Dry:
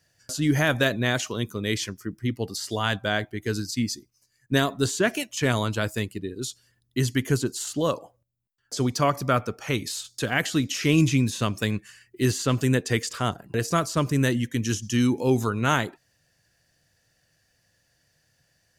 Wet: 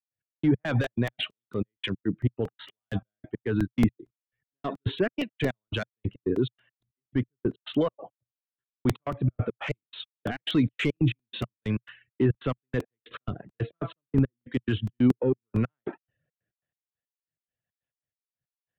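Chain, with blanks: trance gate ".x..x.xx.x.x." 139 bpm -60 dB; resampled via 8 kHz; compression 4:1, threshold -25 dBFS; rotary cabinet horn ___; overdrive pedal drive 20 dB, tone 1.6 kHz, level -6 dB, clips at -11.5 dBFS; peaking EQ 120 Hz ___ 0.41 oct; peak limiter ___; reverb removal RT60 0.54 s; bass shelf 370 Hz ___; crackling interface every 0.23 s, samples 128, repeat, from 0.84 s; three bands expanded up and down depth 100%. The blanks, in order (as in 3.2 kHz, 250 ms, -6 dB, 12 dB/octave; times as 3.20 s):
1 Hz, +2.5 dB, -24 dBFS, +11 dB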